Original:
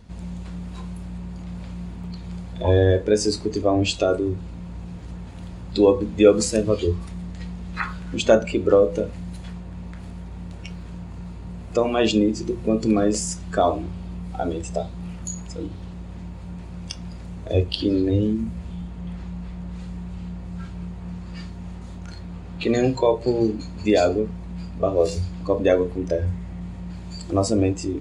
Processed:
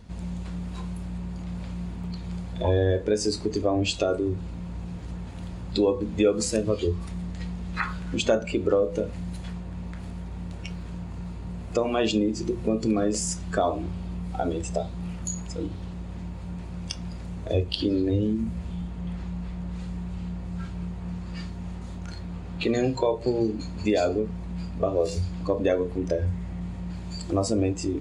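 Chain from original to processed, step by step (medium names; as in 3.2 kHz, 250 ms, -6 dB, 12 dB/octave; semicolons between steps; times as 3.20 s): compression 2:1, threshold -23 dBFS, peak gain reduction 8.5 dB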